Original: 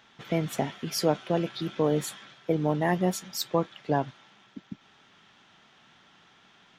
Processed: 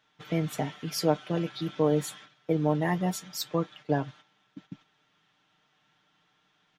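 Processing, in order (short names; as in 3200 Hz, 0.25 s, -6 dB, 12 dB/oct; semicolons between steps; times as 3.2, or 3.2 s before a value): gate -47 dBFS, range -9 dB; comb 6.6 ms; gain -3.5 dB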